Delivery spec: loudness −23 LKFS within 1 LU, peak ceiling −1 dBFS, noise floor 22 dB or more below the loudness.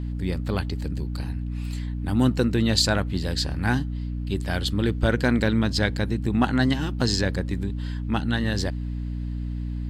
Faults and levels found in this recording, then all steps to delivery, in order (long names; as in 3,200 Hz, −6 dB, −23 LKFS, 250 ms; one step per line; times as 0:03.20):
mains hum 60 Hz; hum harmonics up to 300 Hz; level of the hum −27 dBFS; integrated loudness −25.0 LKFS; sample peak −4.5 dBFS; target loudness −23.0 LKFS
→ mains-hum notches 60/120/180/240/300 Hz
level +2 dB